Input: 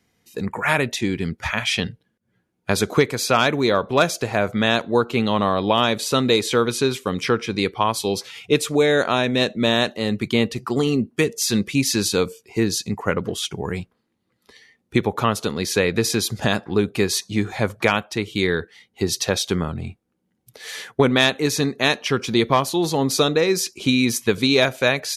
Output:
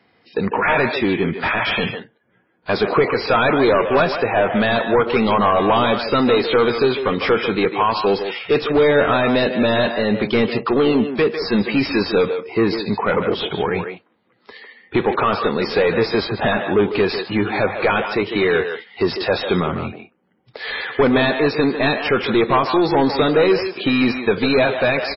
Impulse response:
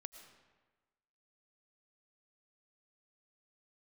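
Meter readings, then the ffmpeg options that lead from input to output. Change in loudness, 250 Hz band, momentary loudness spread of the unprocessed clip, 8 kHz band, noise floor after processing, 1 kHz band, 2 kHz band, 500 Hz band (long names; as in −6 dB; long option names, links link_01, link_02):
+2.5 dB, +2.5 dB, 8 LU, below −40 dB, −60 dBFS, +5.0 dB, +3.0 dB, +4.5 dB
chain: -filter_complex "[0:a]asplit=2[link_01][link_02];[link_02]highpass=frequency=720:poles=1,volume=25dB,asoftclip=type=tanh:threshold=-3dB[link_03];[link_01][link_03]amix=inputs=2:normalize=0,lowpass=frequency=1100:poles=1,volume=-6dB,asplit=2[link_04][link_05];[link_05]adelay=150,highpass=300,lowpass=3400,asoftclip=type=hard:threshold=-12dB,volume=-6dB[link_06];[link_04][link_06]amix=inputs=2:normalize=0,volume=-2dB" -ar 16000 -c:a libmp3lame -b:a 16k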